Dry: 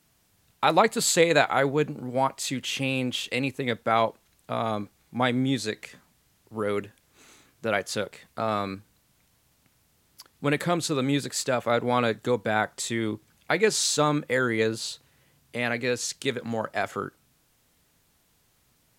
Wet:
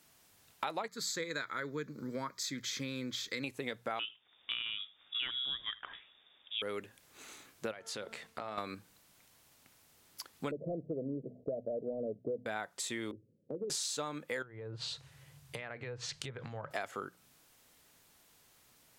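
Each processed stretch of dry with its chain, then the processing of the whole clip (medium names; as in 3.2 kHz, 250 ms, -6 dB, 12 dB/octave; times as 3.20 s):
0.88–3.44 s: peaking EQ 7.7 kHz +4 dB 0.71 oct + static phaser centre 2.8 kHz, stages 6
3.99–6.62 s: frequency inversion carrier 3.6 kHz + delay 79 ms -23.5 dB
7.71–8.58 s: treble shelf 10 kHz -11 dB + de-hum 225 Hz, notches 6 + compression 4:1, threshold -38 dBFS
10.51–12.46 s: hum notches 50/100/150/200/250 Hz + waveshaping leveller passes 1 + rippled Chebyshev low-pass 670 Hz, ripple 3 dB
13.11–13.70 s: Chebyshev band-pass 100–540 Hz, order 5 + compression 2.5:1, threshold -35 dBFS
14.42–16.71 s: low-pass that closes with the level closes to 950 Hz, closed at -21 dBFS + resonant low shelf 180 Hz +8.5 dB, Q 3 + compression, threshold -36 dBFS
whole clip: bass shelf 230 Hz -9.5 dB; hum notches 60/120/180 Hz; compression 6:1, threshold -38 dBFS; trim +2 dB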